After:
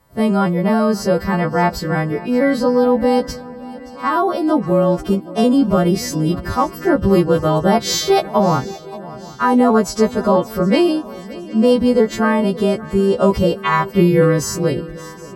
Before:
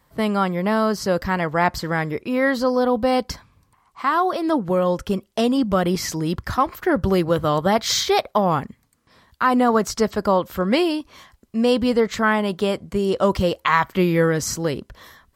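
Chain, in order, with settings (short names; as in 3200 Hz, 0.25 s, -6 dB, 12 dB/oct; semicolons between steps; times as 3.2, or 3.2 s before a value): frequency quantiser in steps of 2 st; tilt shelf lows +7.5 dB, about 1200 Hz; swung echo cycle 0.766 s, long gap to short 3:1, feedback 47%, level -18.5 dB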